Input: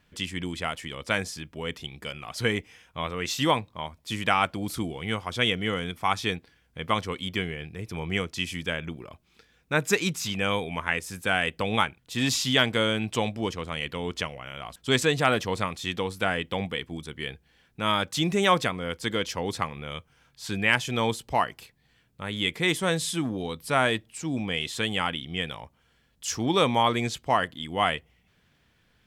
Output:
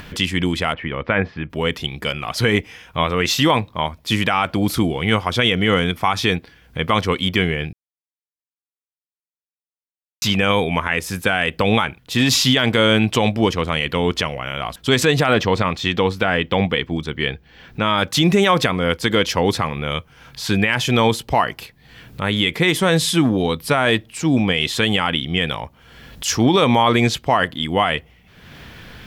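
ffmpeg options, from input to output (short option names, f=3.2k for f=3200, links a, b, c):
-filter_complex "[0:a]asplit=3[a][b][c];[a]afade=t=out:st=0.72:d=0.02[d];[b]lowpass=f=2.4k:w=0.5412,lowpass=f=2.4k:w=1.3066,afade=t=in:st=0.72:d=0.02,afade=t=out:st=1.49:d=0.02[e];[c]afade=t=in:st=1.49:d=0.02[f];[d][e][f]amix=inputs=3:normalize=0,asettb=1/sr,asplit=3[g][h][i];[g]atrim=end=15.334[j];[h]atrim=start=15.33:end=17.98,asetpts=PTS-STARTPTS,afade=t=in:d=0.004:c=qsin,afade=t=out:st=2.646:d=0.004:c=qsin,equalizer=f=11k:w=1.1:g=-14[k];[i]atrim=start=17.976[l];[j][k]acrossfade=d=0.004:c1=hsin:c2=qsin[m];[m][l]acrossfade=d=0.004:c1=qsin:c2=hsin,asplit=3[n][o][p];[n]atrim=end=7.73,asetpts=PTS-STARTPTS,afade=t=out:st=7.726:d=0.004:c=hsin[q];[o]atrim=start=7.73:end=10.22,asetpts=PTS-STARTPTS,volume=0[r];[p]atrim=start=10.22,asetpts=PTS-STARTPTS,afade=t=in:d=0.004:c=hsin[s];[q][r][s]concat=n=3:v=0:a=1,equalizer=f=8.1k:w=1.2:g=-6.5,acompressor=mode=upward:threshold=-39dB:ratio=2.5,alimiter=level_in=17.5dB:limit=-1dB:release=50:level=0:latency=1,volume=-4.5dB"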